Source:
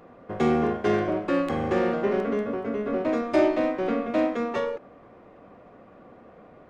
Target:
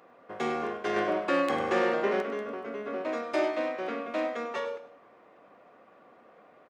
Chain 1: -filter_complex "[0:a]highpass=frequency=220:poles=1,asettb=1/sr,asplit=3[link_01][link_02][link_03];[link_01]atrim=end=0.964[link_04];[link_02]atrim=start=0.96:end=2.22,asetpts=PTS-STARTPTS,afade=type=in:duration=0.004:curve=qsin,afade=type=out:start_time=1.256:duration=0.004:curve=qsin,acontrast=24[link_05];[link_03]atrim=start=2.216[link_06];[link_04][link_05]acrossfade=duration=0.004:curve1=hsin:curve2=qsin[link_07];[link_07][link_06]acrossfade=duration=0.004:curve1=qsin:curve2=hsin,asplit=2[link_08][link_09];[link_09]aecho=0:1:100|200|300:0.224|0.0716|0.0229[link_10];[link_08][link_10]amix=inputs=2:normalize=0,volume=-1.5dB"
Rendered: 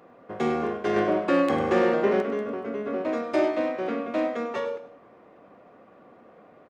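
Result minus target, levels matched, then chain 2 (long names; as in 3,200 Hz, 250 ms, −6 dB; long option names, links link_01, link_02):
250 Hz band +3.0 dB
-filter_complex "[0:a]highpass=frequency=810:poles=1,asettb=1/sr,asplit=3[link_01][link_02][link_03];[link_01]atrim=end=0.964[link_04];[link_02]atrim=start=0.96:end=2.22,asetpts=PTS-STARTPTS,afade=type=in:duration=0.004:curve=qsin,afade=type=out:start_time=1.256:duration=0.004:curve=qsin,acontrast=24[link_05];[link_03]atrim=start=2.216[link_06];[link_04][link_05]acrossfade=duration=0.004:curve1=hsin:curve2=qsin[link_07];[link_07][link_06]acrossfade=duration=0.004:curve1=qsin:curve2=hsin,asplit=2[link_08][link_09];[link_09]aecho=0:1:100|200|300:0.224|0.0716|0.0229[link_10];[link_08][link_10]amix=inputs=2:normalize=0,volume=-1.5dB"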